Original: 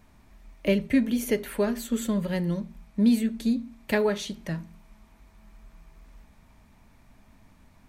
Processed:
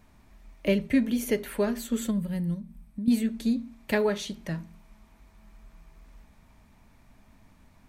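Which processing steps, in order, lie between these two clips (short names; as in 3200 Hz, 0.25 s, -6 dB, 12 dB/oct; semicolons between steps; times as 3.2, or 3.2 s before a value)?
2.54–3.08 compressor 4:1, threshold -33 dBFS, peak gain reduction 13 dB; 2.11–3.1 spectral gain 300–7800 Hz -10 dB; gain -1 dB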